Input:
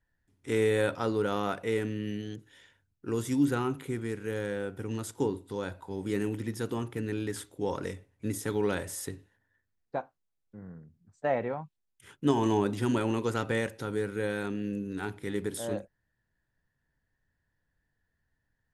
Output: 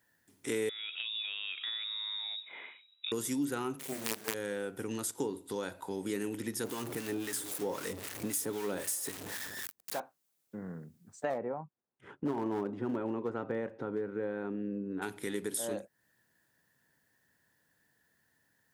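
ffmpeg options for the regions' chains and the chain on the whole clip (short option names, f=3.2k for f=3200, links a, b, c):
-filter_complex "[0:a]asettb=1/sr,asplit=3[a][b][c];[a]atrim=end=0.694[d];[b]atrim=start=0.69:end=3.12,asetpts=PTS-STARTPTS,afade=t=in:d=0.004:c=qsin,afade=t=out:st=2.426:d=0.004:c=qsin,equalizer=f=1.3k:t=o:w=0.72:g=7.5,acompressor=threshold=-41dB:ratio=4:attack=3.2:release=140:knee=1:detection=peak,lowpass=f=3.3k:t=q:w=0.5098,lowpass=f=3.3k:t=q:w=0.6013,lowpass=f=3.3k:t=q:w=0.9,lowpass=f=3.3k:t=q:w=2.563,afreqshift=-3900[e];[c]atrim=start=3.116[f];[d][e]acrossfade=d=0.004:c1=hsin:c2=qsin[g];[g][f]acrossfade=d=0.004:c1=qsin:c2=hsin,asettb=1/sr,asplit=3[h][i][j];[h]atrim=end=3.794[k];[i]atrim=start=3.79:end=4.34,asetpts=PTS-STARTPTS,afade=t=in:d=0.004:c=qsin,afade=t=out:st=0.546:d=0.004:c=qsin,bandreject=f=60:t=h:w=6,bandreject=f=120:t=h:w=6,bandreject=f=180:t=h:w=6,bandreject=f=240:t=h:w=6,bandreject=f=300:t=h:w=6,bandreject=f=360:t=h:w=6,bandreject=f=420:t=h:w=6,bandreject=f=480:t=h:w=6,asplit=2[l][m];[m]adelay=36,volume=-8dB[n];[l][n]amix=inputs=2:normalize=0,atrim=end_sample=24255,acrusher=bits=5:dc=4:mix=0:aa=0.000001[o];[j]atrim=start=4.336[p];[k][o]acrossfade=d=0.004:c1=hsin:c2=qsin[q];[q][p]acrossfade=d=0.004:c1=qsin:c2=hsin,asettb=1/sr,asplit=3[r][s][t];[r]atrim=end=6.644[u];[s]atrim=start=6.64:end=10,asetpts=PTS-STARTPTS,afade=t=in:d=0.004:c=qsin,afade=t=out:st=3.356:d=0.004:c=qsin,aeval=exprs='val(0)+0.5*0.015*sgn(val(0))':c=same,acrossover=split=980[v][w];[v]aeval=exprs='val(0)*(1-0.7/2+0.7/2*cos(2*PI*3.8*n/s))':c=same[x];[w]aeval=exprs='val(0)*(1-0.7/2-0.7/2*cos(2*PI*3.8*n/s))':c=same[y];[x][y]amix=inputs=2:normalize=0[z];[t]atrim=start=9.996[aa];[u][z]acrossfade=d=0.004:c1=hsin:c2=qsin[ab];[ab][aa]acrossfade=d=0.004:c1=qsin:c2=hsin,asettb=1/sr,asplit=3[ac][ad][ae];[ac]atrim=end=11.304[af];[ad]atrim=start=11.3:end=15.02,asetpts=PTS-STARTPTS,afade=t=in:d=0.004:c=qsin,afade=t=out:st=3.716:d=0.004:c=qsin,lowpass=1.1k,aeval=exprs='clip(val(0),-1,0.0562)':c=same[ag];[ae]atrim=start=15.016[ah];[af][ag]acrossfade=d=0.004:c1=hsin:c2=qsin[ai];[ai][ah]acrossfade=d=0.004:c1=qsin:c2=hsin,highpass=190,highshelf=f=6k:g=11.5,acompressor=threshold=-46dB:ratio=2.5,volume=8dB"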